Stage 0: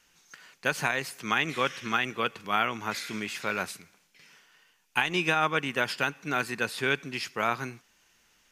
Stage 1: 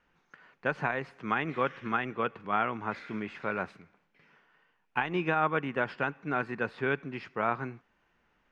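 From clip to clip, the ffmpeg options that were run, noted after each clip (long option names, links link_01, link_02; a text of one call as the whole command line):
ffmpeg -i in.wav -af "lowpass=1500" out.wav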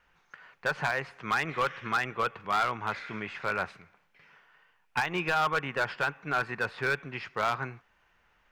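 ffmpeg -i in.wav -af "equalizer=frequency=260:width=0.83:gain=-11,volume=26.5dB,asoftclip=hard,volume=-26.5dB,volume=5.5dB" out.wav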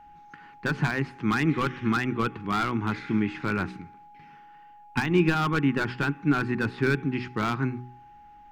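ffmpeg -i in.wav -af "lowshelf=frequency=410:width_type=q:width=3:gain=11,aeval=exprs='val(0)+0.00355*sin(2*PI*830*n/s)':channel_layout=same,bandreject=frequency=62.2:width_type=h:width=4,bandreject=frequency=124.4:width_type=h:width=4,bandreject=frequency=186.6:width_type=h:width=4,bandreject=frequency=248.8:width_type=h:width=4,bandreject=frequency=311:width_type=h:width=4,bandreject=frequency=373.2:width_type=h:width=4,bandreject=frequency=435.4:width_type=h:width=4,volume=1dB" out.wav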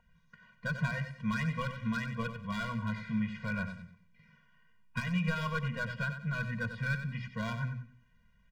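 ffmpeg -i in.wav -af "aecho=1:1:93|186|279:0.335|0.1|0.0301,afftfilt=real='re*eq(mod(floor(b*sr/1024/230),2),0)':imag='im*eq(mod(floor(b*sr/1024/230),2),0)':win_size=1024:overlap=0.75,volume=-5.5dB" out.wav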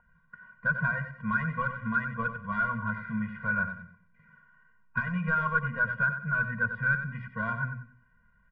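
ffmpeg -i in.wav -af "lowpass=frequency=1400:width_type=q:width=4.1" out.wav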